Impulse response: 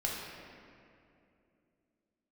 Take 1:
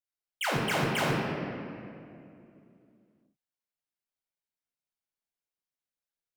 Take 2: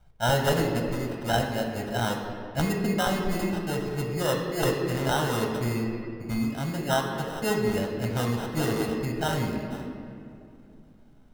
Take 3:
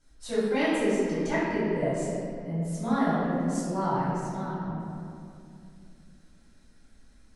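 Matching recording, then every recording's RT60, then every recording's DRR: 1; 2.6 s, 2.7 s, 2.6 s; -4.0 dB, 2.0 dB, -12.0 dB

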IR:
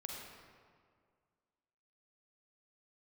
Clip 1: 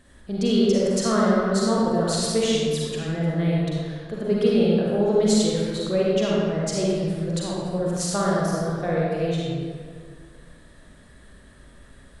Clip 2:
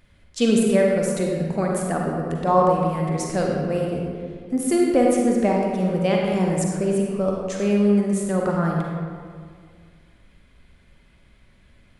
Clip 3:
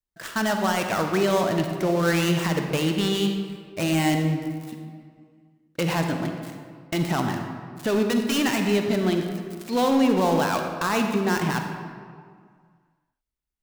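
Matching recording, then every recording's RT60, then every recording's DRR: 2; 2.0 s, 2.0 s, 2.0 s; -5.5 dB, -1.0 dB, 4.0 dB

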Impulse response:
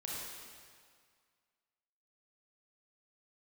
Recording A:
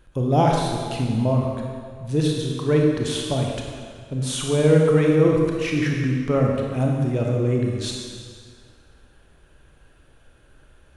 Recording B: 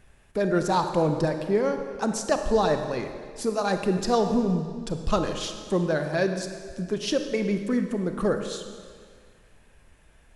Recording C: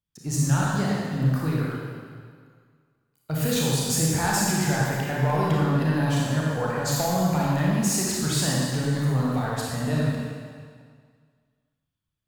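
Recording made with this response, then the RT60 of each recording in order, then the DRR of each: C; 2.0 s, 2.0 s, 2.0 s; -0.5 dB, 6.5 dB, -5.0 dB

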